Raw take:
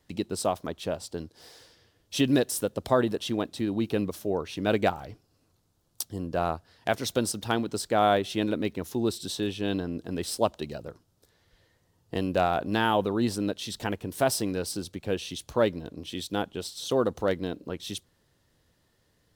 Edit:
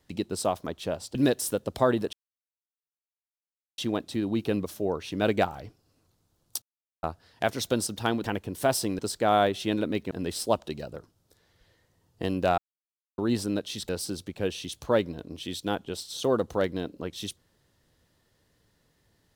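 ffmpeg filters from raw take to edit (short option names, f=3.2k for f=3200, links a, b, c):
-filter_complex "[0:a]asplit=11[a][b][c][d][e][f][g][h][i][j][k];[a]atrim=end=1.152[l];[b]atrim=start=2.248:end=3.23,asetpts=PTS-STARTPTS,afade=t=out:st=0.978:d=0.004:c=hsin,apad=pad_dur=1.65[m];[c]atrim=start=3.23:end=6.07,asetpts=PTS-STARTPTS,afade=t=in:d=0.004:c=hsin,afade=t=out:st=2.836:d=0.004:c=hsin[n];[d]atrim=start=6.07:end=6.48,asetpts=PTS-STARTPTS,volume=0[o];[e]atrim=start=6.48:end=7.692,asetpts=PTS-STARTPTS,afade=t=in:d=0.004:c=hsin[p];[f]atrim=start=13.808:end=14.562[q];[g]atrim=start=7.688:end=8.812[r];[h]atrim=start=10.028:end=12.5,asetpts=PTS-STARTPTS,afade=t=out:st=2.468:d=0.004:c=hsin[s];[i]atrim=start=12.5:end=13.1,asetpts=PTS-STARTPTS,volume=0[t];[j]atrim=start=13.1:end=13.812,asetpts=PTS-STARTPTS,afade=t=in:d=0.004:c=hsin[u];[k]atrim=start=14.558[v];[m][n][o][p]concat=n=4:v=0:a=1[w];[l][w]acrossfade=d=0.004:c1=hsin:c2=hsin[x];[x][q]acrossfade=d=0.004:c1=hsin:c2=hsin[y];[y][r]acrossfade=d=0.004:c1=hsin:c2=hsin[z];[s][t][u]concat=n=3:v=0:a=1[aa];[z][aa]acrossfade=d=0.004:c1=hsin:c2=hsin[ab];[ab][v]acrossfade=d=0.004:c1=hsin:c2=hsin"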